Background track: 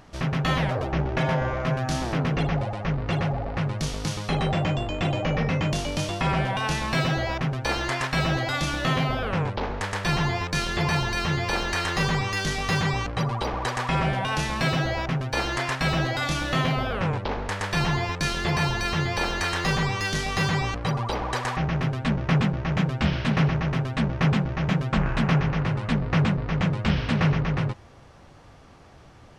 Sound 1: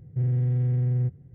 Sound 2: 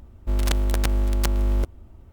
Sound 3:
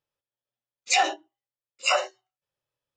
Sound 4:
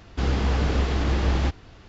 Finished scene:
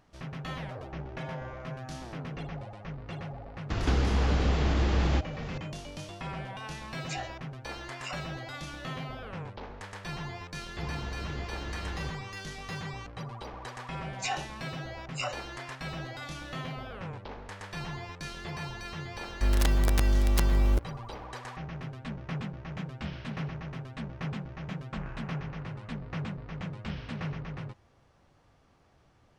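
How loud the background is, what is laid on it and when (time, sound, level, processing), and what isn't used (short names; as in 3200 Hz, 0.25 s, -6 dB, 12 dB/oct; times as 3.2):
background track -14 dB
3.7 add 4 -3.5 dB + three-band squash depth 100%
6.19 add 3 -17.5 dB
10.6 add 4 -16 dB
13.32 add 3 -12 dB
19.14 add 2 -6 dB + sample leveller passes 1
not used: 1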